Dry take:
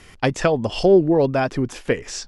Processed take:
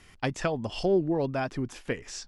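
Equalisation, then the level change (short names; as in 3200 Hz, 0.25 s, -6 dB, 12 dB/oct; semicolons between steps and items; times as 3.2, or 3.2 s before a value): bell 480 Hz -4 dB 0.7 oct; -8.5 dB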